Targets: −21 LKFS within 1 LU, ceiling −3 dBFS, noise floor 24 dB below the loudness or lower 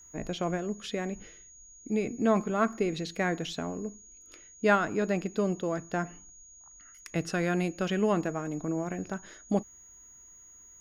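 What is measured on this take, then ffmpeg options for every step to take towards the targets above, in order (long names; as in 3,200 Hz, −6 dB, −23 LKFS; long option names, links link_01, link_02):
interfering tone 6,700 Hz; level of the tone −51 dBFS; integrated loudness −31.0 LKFS; sample peak −11.0 dBFS; target loudness −21.0 LKFS
→ -af "bandreject=frequency=6700:width=30"
-af "volume=10dB,alimiter=limit=-3dB:level=0:latency=1"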